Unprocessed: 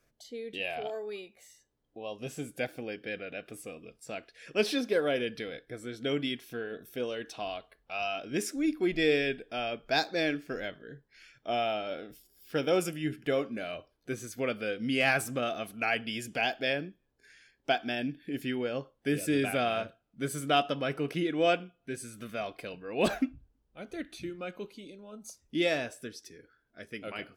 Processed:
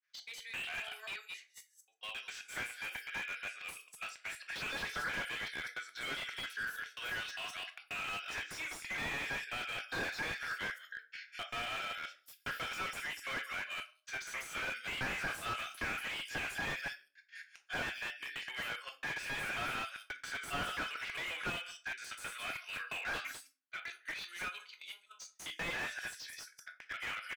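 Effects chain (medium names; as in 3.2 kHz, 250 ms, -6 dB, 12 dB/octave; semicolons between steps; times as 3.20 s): time reversed locally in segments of 134 ms; Chebyshev high-pass 1.5 kHz, order 3; bands offset in time lows, highs 200 ms, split 5.9 kHz; in parallel at 0 dB: compression, threshold -46 dBFS, peak gain reduction 20 dB; on the sum: gate -53 dBFS, range -15 dB; treble shelf 5.1 kHz -4 dB; simulated room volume 210 m³, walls furnished, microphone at 0.98 m; slew-rate limiter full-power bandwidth 18 Hz; trim +4 dB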